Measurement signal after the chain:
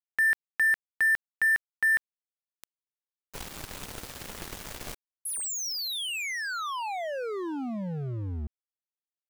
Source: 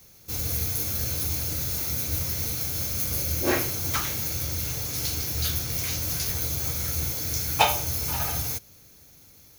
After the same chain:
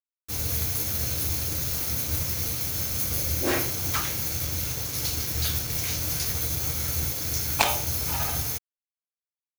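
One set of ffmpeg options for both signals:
-af "aeval=exprs='0.596*(cos(1*acos(clip(val(0)/0.596,-1,1)))-cos(1*PI/2))+0.211*(cos(3*acos(clip(val(0)/0.596,-1,1)))-cos(3*PI/2))+0.0422*(cos(7*acos(clip(val(0)/0.596,-1,1)))-cos(7*PI/2))':c=same,aeval=exprs='sgn(val(0))*max(abs(val(0))-0.00944,0)':c=same,alimiter=level_in=10.5dB:limit=-1dB:release=50:level=0:latency=1"

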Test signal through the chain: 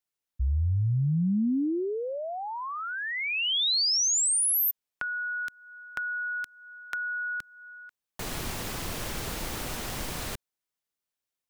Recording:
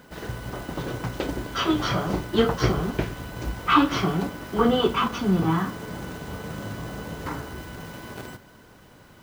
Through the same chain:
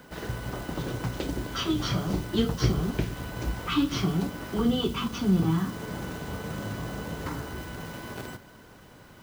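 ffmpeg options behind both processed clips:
-filter_complex "[0:a]acrossover=split=310|3000[a][b][c];[b]acompressor=threshold=-35dB:ratio=6[d];[a][d][c]amix=inputs=3:normalize=0"

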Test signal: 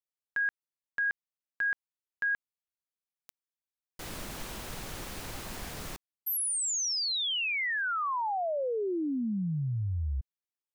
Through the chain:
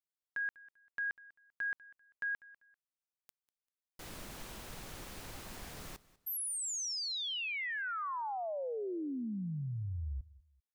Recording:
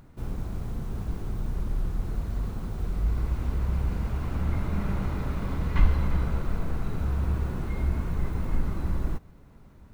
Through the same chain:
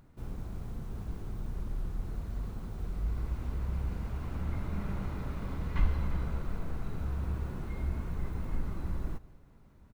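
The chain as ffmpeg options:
-af "aecho=1:1:196|392:0.0944|0.0264,volume=-7dB"

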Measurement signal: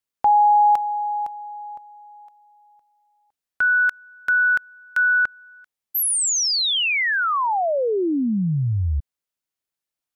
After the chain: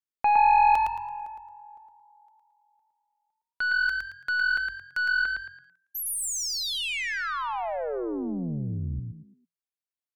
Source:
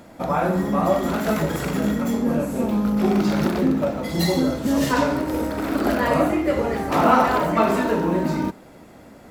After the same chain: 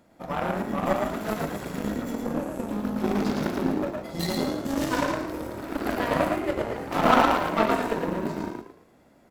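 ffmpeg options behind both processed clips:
-filter_complex "[0:a]aeval=exprs='0.596*(cos(1*acos(clip(val(0)/0.596,-1,1)))-cos(1*PI/2))+0.0335*(cos(2*acos(clip(val(0)/0.596,-1,1)))-cos(2*PI/2))+0.119*(cos(3*acos(clip(val(0)/0.596,-1,1)))-cos(3*PI/2))+0.0075*(cos(5*acos(clip(val(0)/0.596,-1,1)))-cos(5*PI/2))+0.0237*(cos(7*acos(clip(val(0)/0.596,-1,1)))-cos(7*PI/2))':c=same,asplit=5[a][b][c][d][e];[b]adelay=111,afreqshift=43,volume=-3.5dB[f];[c]adelay=222,afreqshift=86,volume=-13.7dB[g];[d]adelay=333,afreqshift=129,volume=-23.8dB[h];[e]adelay=444,afreqshift=172,volume=-34dB[i];[a][f][g][h][i]amix=inputs=5:normalize=0"

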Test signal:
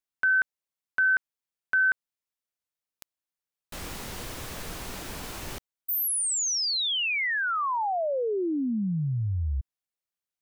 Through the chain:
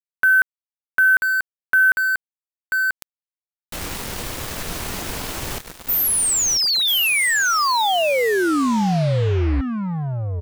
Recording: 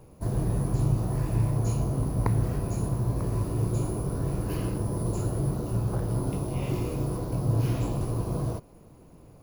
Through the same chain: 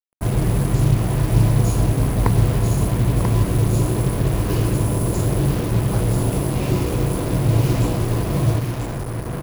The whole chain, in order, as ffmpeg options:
-af "aecho=1:1:988:0.501,acrusher=bits=5:mix=0:aa=0.5,volume=8dB"

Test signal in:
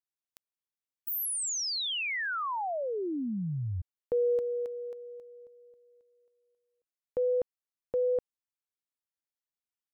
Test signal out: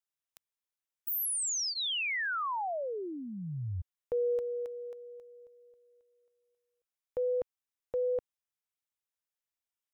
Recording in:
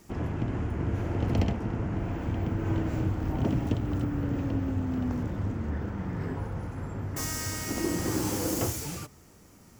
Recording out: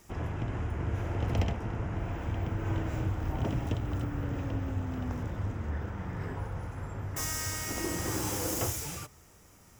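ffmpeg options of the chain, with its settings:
-af "equalizer=f=240:w=0.84:g=-8,bandreject=f=4.4k:w=10"

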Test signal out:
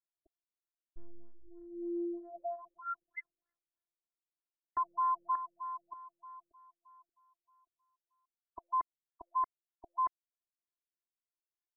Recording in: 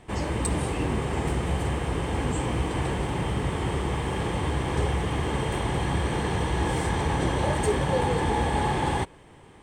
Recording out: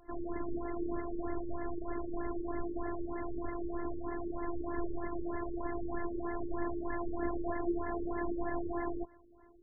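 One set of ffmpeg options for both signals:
-af "afftfilt=real='hypot(re,im)*cos(PI*b)':imag='0':win_size=512:overlap=0.75,afftfilt=real='re*lt(b*sr/1024,550*pow(2100/550,0.5+0.5*sin(2*PI*3.2*pts/sr)))':imag='im*lt(b*sr/1024,550*pow(2100/550,0.5+0.5*sin(2*PI*3.2*pts/sr)))':win_size=1024:overlap=0.75,volume=-4.5dB"

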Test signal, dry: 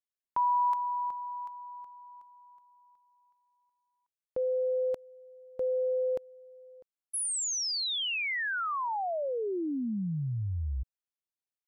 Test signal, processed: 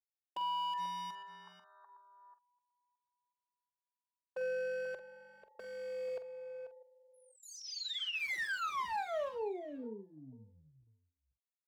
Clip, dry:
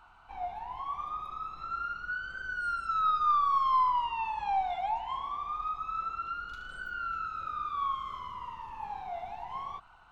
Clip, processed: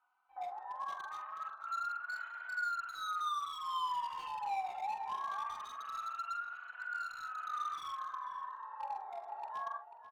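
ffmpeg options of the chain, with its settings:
-filter_complex "[0:a]lowpass=4.9k,afwtdn=0.0112,highpass=560,highshelf=f=2.5k:g=-8.5,acompressor=threshold=-32dB:ratio=6:attack=0.62:release=169:knee=1:detection=rms,aeval=exprs='0.0211*(abs(mod(val(0)/0.0211+3,4)-2)-1)':c=same,asplit=2[a][b];[b]adelay=45,volume=-10dB[c];[a][c]amix=inputs=2:normalize=0,asplit=2[d][e];[e]adelay=489.8,volume=-10dB,highshelf=f=4k:g=-11[f];[d][f]amix=inputs=2:normalize=0,asplit=2[g][h];[h]adelay=3.5,afreqshift=0.26[i];[g][i]amix=inputs=2:normalize=1,volume=1.5dB"

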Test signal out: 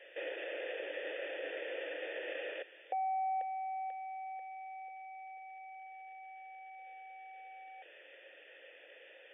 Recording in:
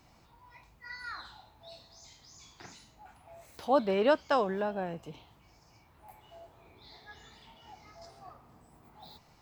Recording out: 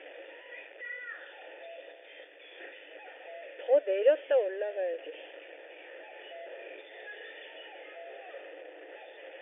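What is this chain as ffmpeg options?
-filter_complex "[0:a]aeval=exprs='val(0)+0.5*0.02*sgn(val(0))':c=same,afftfilt=real='re*between(b*sr/4096,290,3600)':imag='im*between(b*sr/4096,290,3600)':win_size=4096:overlap=0.75,asplit=3[a][b][c];[a]bandpass=f=530:t=q:w=8,volume=0dB[d];[b]bandpass=f=1.84k:t=q:w=8,volume=-6dB[e];[c]bandpass=f=2.48k:t=q:w=8,volume=-9dB[f];[d][e][f]amix=inputs=3:normalize=0,volume=7dB"

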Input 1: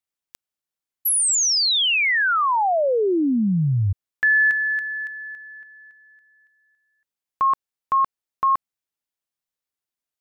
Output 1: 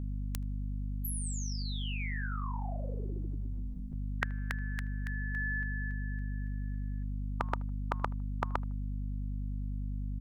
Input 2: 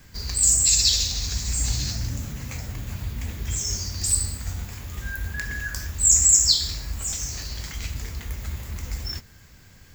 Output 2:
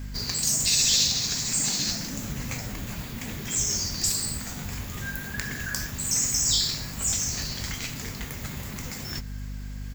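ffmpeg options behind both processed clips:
-filter_complex "[0:a]aeval=exprs='val(0)+0.0126*(sin(2*PI*50*n/s)+sin(2*PI*2*50*n/s)/2+sin(2*PI*3*50*n/s)/3+sin(2*PI*4*50*n/s)/4+sin(2*PI*5*50*n/s)/5)':c=same,afftfilt=real='re*lt(hypot(re,im),0.224)':imag='im*lt(hypot(re,im),0.224)':win_size=1024:overlap=0.75,asplit=2[a][b];[b]adelay=78,lowpass=f=1.6k:p=1,volume=-23dB,asplit=2[c][d];[d]adelay=78,lowpass=f=1.6k:p=1,volume=0.32[e];[a][c][e]amix=inputs=3:normalize=0,volume=3.5dB"

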